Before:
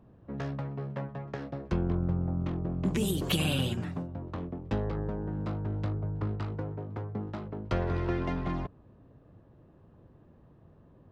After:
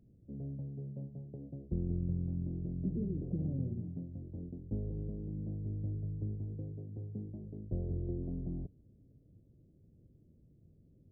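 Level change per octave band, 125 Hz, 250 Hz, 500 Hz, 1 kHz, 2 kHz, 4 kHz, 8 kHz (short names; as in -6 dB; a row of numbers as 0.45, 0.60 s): -5.0 dB, -6.5 dB, -12.0 dB, under -25 dB, under -40 dB, under -40 dB, under -35 dB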